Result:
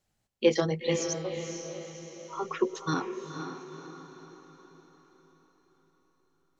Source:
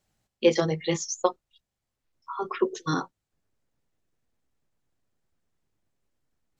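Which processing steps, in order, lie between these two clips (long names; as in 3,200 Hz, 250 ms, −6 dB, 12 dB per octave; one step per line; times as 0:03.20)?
0:01.13–0:02.33: stiff-string resonator 180 Hz, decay 0.35 s, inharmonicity 0.008
tape wow and flutter 25 cents
feedback delay with all-pass diffusion 495 ms, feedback 48%, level −7.5 dB
level −2.5 dB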